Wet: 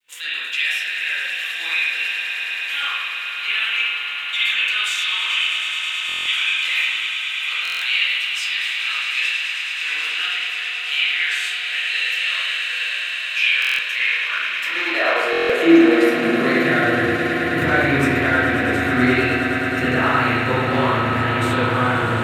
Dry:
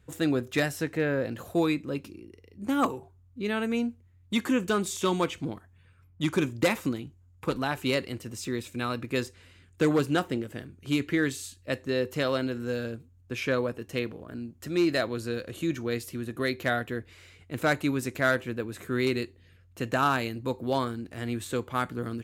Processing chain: spectral sustain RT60 0.34 s; expander -52 dBFS; peaking EQ 2 kHz +9 dB 2.6 oct; in parallel at +2 dB: compression 12:1, threshold -33 dBFS, peak gain reduction 21 dB; on the sum: peak limiter -11.5 dBFS, peak gain reduction 8.5 dB; high-pass sweep 2.8 kHz -> 74 Hz, 13.59–17.29 s; bit crusher 12-bit; on a send: echo with a slow build-up 107 ms, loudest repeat 8, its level -12 dB; on the sum: spring tank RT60 1.2 s, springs 36/48 ms, chirp 75 ms, DRR -9.5 dB; buffer glitch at 6.07/7.63/13.60/15.31 s, samples 1024, times 7; trim -5.5 dB

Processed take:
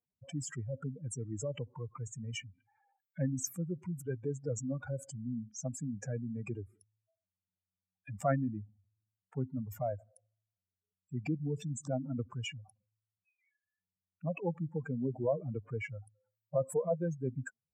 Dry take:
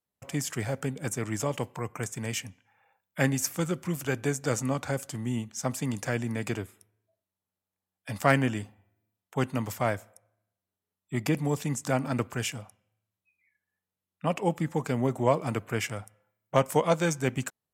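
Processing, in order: spectral contrast enhancement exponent 3.1; trim -7 dB

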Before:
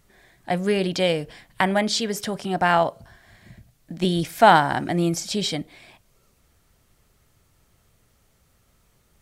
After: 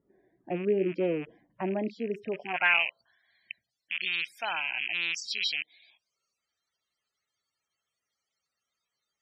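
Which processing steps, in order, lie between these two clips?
rattle on loud lows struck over -38 dBFS, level -8 dBFS; loudest bins only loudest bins 64; band-pass sweep 330 Hz -> 4.3 kHz, 2.26–2.88 s

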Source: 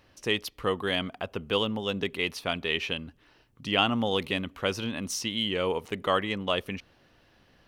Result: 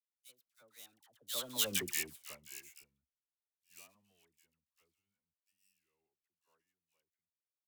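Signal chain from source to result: dead-time distortion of 0.092 ms; Doppler pass-by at 1.67 s, 53 m/s, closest 6.4 m; pre-emphasis filter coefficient 0.9; phase dispersion lows, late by 75 ms, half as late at 990 Hz; three bands expanded up and down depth 100%

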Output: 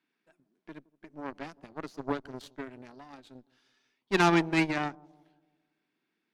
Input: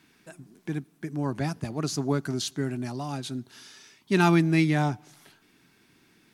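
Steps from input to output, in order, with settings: three-band isolator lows -24 dB, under 190 Hz, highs -15 dB, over 4.5 kHz; Chebyshev shaper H 6 -25 dB, 7 -18 dB, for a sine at -10.5 dBFS; bucket-brigade echo 167 ms, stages 1024, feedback 47%, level -23.5 dB

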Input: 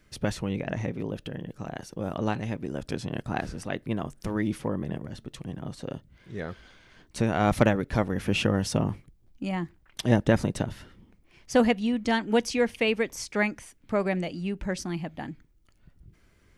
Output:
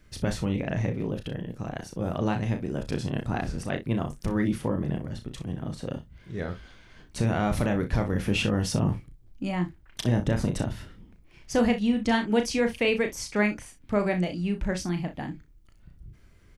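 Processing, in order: bass shelf 120 Hz +7.5 dB; peak limiter -13.5 dBFS, peak gain reduction 10.5 dB; on a send: early reflections 34 ms -7 dB, 61 ms -14.5 dB

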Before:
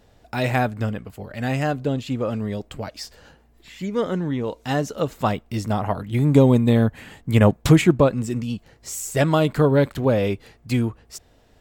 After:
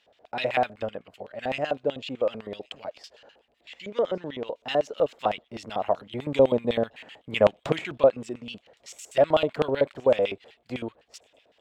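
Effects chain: LFO band-pass square 7.9 Hz 600–2900 Hz; feedback echo behind a high-pass 1114 ms, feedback 33%, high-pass 3.9 kHz, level -21.5 dB; trim +4 dB

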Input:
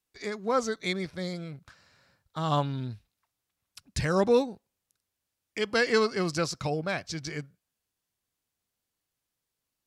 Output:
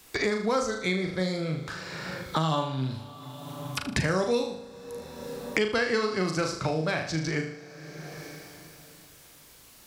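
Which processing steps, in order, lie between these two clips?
flutter echo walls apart 6.5 m, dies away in 0.45 s; two-slope reverb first 0.27 s, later 3.1 s, from -18 dB, DRR 15.5 dB; three bands compressed up and down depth 100%

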